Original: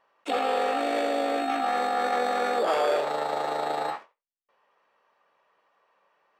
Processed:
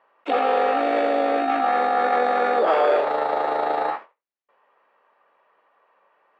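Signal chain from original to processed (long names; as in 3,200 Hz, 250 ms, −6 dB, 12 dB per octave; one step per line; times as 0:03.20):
band-pass filter 230–2,400 Hz
level +6 dB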